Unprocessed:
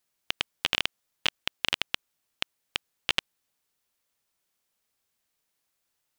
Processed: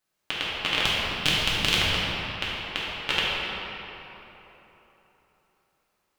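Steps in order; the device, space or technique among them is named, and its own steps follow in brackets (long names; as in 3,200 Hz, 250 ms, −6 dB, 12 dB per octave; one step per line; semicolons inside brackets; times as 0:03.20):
0:00.83–0:01.81: bass and treble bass +12 dB, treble +12 dB
swimming-pool hall (convolution reverb RT60 3.7 s, pre-delay 3 ms, DRR −8.5 dB; high-shelf EQ 3,400 Hz −7 dB)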